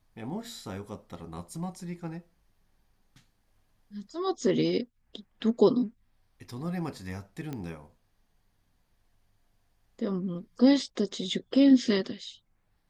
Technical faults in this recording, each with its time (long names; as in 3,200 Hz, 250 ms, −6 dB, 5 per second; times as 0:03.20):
0:07.53: click −23 dBFS